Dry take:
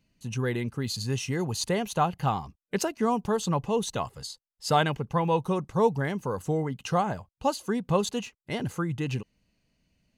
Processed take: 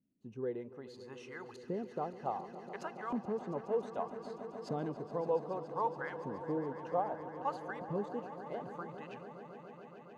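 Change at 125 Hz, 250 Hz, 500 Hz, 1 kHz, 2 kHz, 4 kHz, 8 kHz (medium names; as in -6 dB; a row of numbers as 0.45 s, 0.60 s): -18.0 dB, -12.5 dB, -8.5 dB, -10.0 dB, -12.5 dB, -24.5 dB, under -25 dB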